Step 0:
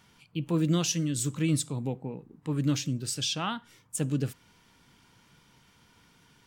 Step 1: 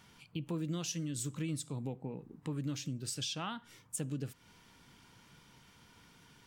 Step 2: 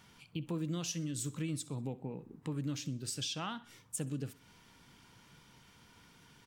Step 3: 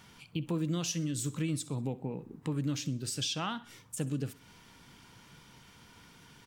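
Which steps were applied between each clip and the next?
compression 3:1, threshold -38 dBFS, peak gain reduction 12.5 dB
feedback delay 64 ms, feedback 46%, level -19.5 dB
de-esser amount 75%; trim +4.5 dB

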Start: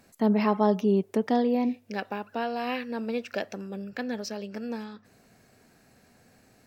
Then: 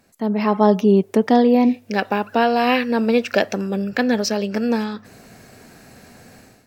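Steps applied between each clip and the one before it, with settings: level rider gain up to 14.5 dB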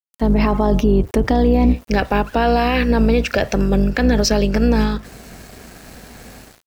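octave divider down 2 oct, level 0 dB; peak limiter -12 dBFS, peak gain reduction 11 dB; small samples zeroed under -45 dBFS; trim +5.5 dB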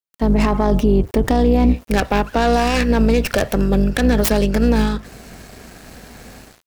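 tracing distortion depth 0.42 ms

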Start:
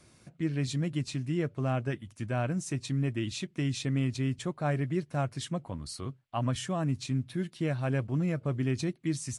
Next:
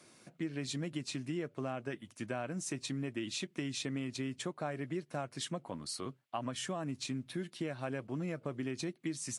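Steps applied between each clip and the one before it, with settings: high-pass 230 Hz 12 dB/octave; compression, threshold -35 dBFS, peak gain reduction 9 dB; trim +1 dB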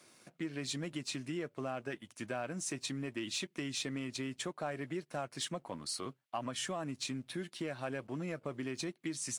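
bass shelf 350 Hz -6 dB; waveshaping leveller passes 1; trim -1.5 dB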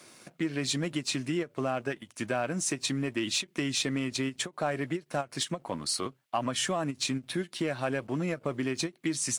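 endings held to a fixed fall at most 400 dB/s; trim +8.5 dB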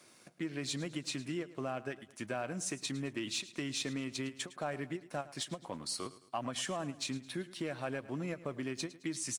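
feedback delay 108 ms, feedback 42%, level -17 dB; trim -7.5 dB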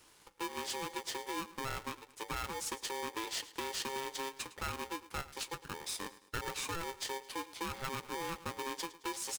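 polarity switched at an audio rate 670 Hz; trim -1.5 dB

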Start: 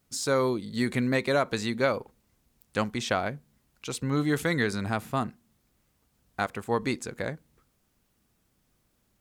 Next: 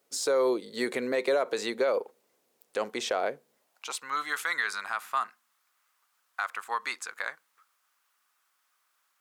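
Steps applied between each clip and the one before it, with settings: hard clipper -13 dBFS, distortion -42 dB; high-pass sweep 460 Hz -> 1.2 kHz, 3.52–4.06 s; peak limiter -18 dBFS, peak gain reduction 9.5 dB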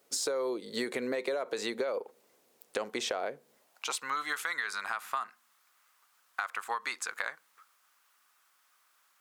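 compression 6:1, threshold -35 dBFS, peak gain reduction 12.5 dB; trim +4.5 dB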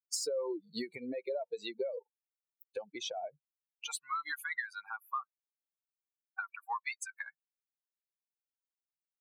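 expander on every frequency bin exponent 3; trim +1.5 dB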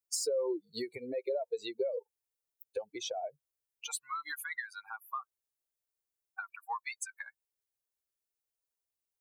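FFT filter 110 Hz 0 dB, 190 Hz -16 dB, 410 Hz -1 dB, 1.2 kHz -9 dB, 3.1 kHz -8 dB, 10 kHz -1 dB; in parallel at -3 dB: peak limiter -34.5 dBFS, peak gain reduction 8.5 dB; on the sum: trim +2 dB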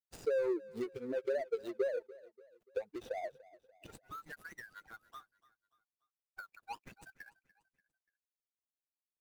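median filter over 41 samples; feedback delay 291 ms, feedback 45%, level -20 dB; trim +1 dB

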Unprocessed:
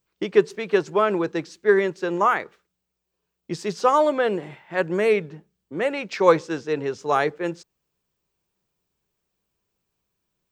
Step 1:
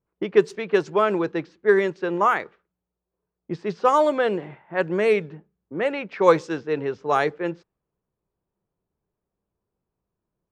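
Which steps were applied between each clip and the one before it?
level-controlled noise filter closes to 990 Hz, open at -14.5 dBFS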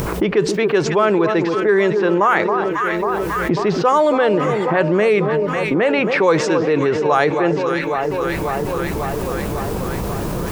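upward compressor, threshold -22 dBFS; echo whose repeats swap between lows and highs 272 ms, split 1.2 kHz, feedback 76%, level -12.5 dB; level flattener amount 70%; trim -1 dB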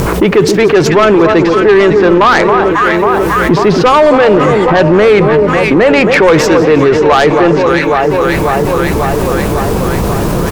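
self-modulated delay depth 0.082 ms; frequency-shifting echo 177 ms, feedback 63%, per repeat -96 Hz, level -18 dB; sine folder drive 7 dB, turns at -1.5 dBFS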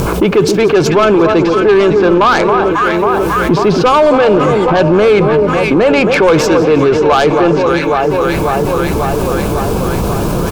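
band-stop 1.9 kHz, Q 5.1; trim -2 dB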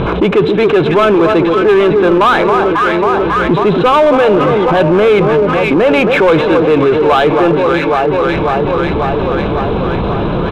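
brick-wall FIR low-pass 4.1 kHz; bass shelf 140 Hz -3.5 dB; in parallel at -5 dB: saturation -19.5 dBFS, distortion -6 dB; on the sum: trim -1 dB

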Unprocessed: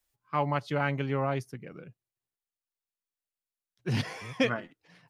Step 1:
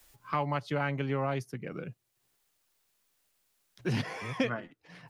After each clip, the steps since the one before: three bands compressed up and down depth 70%; trim -2 dB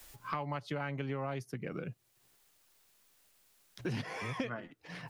compression 3:1, threshold -44 dBFS, peak gain reduction 15 dB; trim +6 dB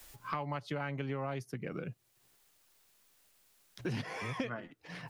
no audible change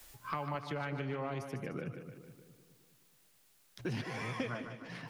two-band feedback delay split 460 Hz, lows 210 ms, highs 150 ms, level -8 dB; trim -1 dB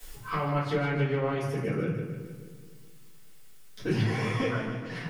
simulated room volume 43 m³, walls mixed, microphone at 2 m; trim -2 dB

